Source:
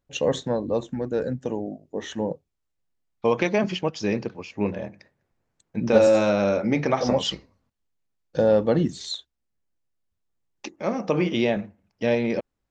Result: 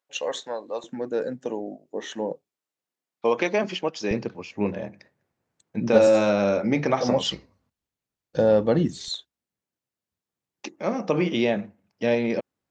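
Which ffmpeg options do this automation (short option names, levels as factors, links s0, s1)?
-af "asetnsamples=n=441:p=0,asendcmd='0.84 highpass f 270;4.11 highpass f 98;7.26 highpass f 43;9.08 highpass f 120',highpass=680"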